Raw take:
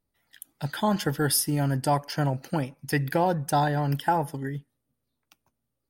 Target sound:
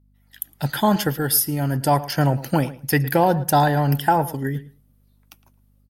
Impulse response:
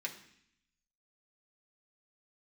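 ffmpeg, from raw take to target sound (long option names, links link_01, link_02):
-filter_complex "[0:a]equalizer=frequency=12000:width=3.7:gain=12.5,dynaudnorm=framelen=200:gausssize=3:maxgain=15dB,aeval=exprs='val(0)+0.00251*(sin(2*PI*50*n/s)+sin(2*PI*2*50*n/s)/2+sin(2*PI*3*50*n/s)/3+sin(2*PI*4*50*n/s)/4+sin(2*PI*5*50*n/s)/5)':channel_layout=same,asplit=2[link_01][link_02];[link_02]adelay=111,lowpass=frequency=3500:poles=1,volume=-16.5dB,asplit=2[link_03][link_04];[link_04]adelay=111,lowpass=frequency=3500:poles=1,volume=0.15[link_05];[link_01][link_03][link_05]amix=inputs=3:normalize=0,volume=-5dB"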